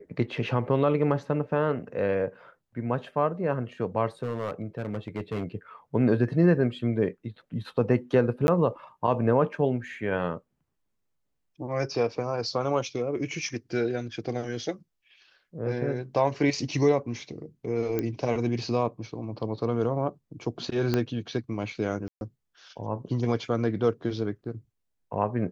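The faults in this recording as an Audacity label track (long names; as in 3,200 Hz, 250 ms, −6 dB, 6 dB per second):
4.220000	5.440000	clipping −26 dBFS
8.470000	8.480000	drop-out 11 ms
17.990000	17.990000	click −15 dBFS
20.940000	20.940000	click −12 dBFS
22.080000	22.210000	drop-out 131 ms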